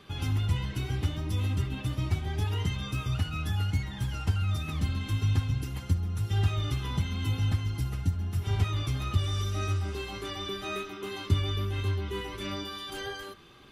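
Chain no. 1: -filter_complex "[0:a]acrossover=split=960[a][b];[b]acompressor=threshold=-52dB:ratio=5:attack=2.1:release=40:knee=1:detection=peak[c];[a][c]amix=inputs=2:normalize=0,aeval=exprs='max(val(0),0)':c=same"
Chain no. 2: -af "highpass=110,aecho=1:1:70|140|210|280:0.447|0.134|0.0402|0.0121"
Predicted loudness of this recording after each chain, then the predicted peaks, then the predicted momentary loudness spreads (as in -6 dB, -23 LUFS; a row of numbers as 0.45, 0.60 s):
-36.5, -33.0 LUFS; -13.5, -16.5 dBFS; 10, 5 LU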